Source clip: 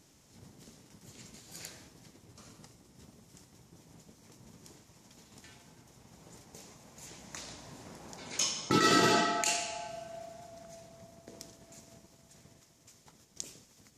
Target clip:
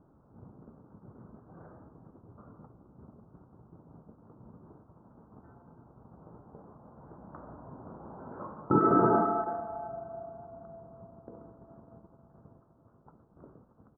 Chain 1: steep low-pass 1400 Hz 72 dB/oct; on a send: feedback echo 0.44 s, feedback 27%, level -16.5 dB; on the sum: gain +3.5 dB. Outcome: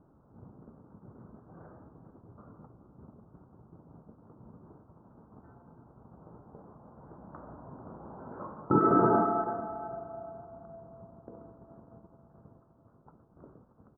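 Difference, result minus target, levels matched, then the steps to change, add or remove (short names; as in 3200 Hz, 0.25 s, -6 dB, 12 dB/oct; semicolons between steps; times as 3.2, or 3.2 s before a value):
echo-to-direct +11 dB
change: feedback echo 0.44 s, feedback 27%, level -27.5 dB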